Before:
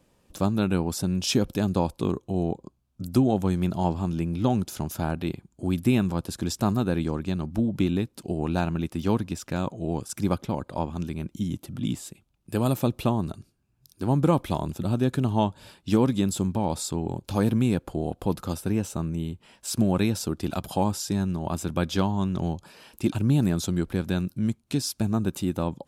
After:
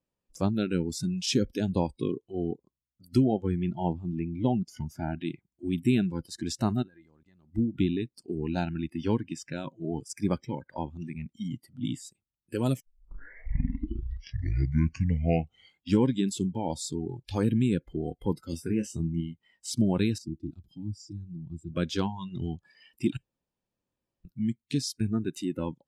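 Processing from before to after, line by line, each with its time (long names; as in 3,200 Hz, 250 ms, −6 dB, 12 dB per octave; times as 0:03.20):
0:03.24–0:05.15: high-shelf EQ 4,700 Hz −8.5 dB
0:06.82–0:07.49: output level in coarse steps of 19 dB
0:12.80: tape start 3.26 s
0:18.50–0:19.21: double-tracking delay 24 ms −8 dB
0:20.18–0:21.72: drawn EQ curve 110 Hz 0 dB, 340 Hz −3 dB, 530 Hz −24 dB, 2,300 Hz −18 dB, 4,400 Hz −11 dB, 10,000 Hz −15 dB
0:23.17–0:24.25: fill with room tone
whole clip: noise reduction from a noise print of the clip's start 22 dB; low-pass filter 7,800 Hz 12 dB per octave; dynamic equaliser 1,200 Hz, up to −4 dB, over −42 dBFS, Q 0.78; level −1.5 dB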